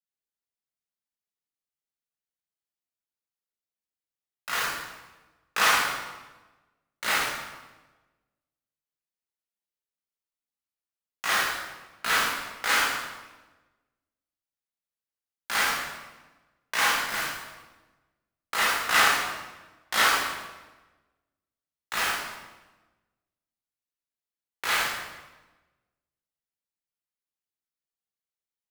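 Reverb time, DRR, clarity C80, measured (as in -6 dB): 1.2 s, -7.5 dB, 2.5 dB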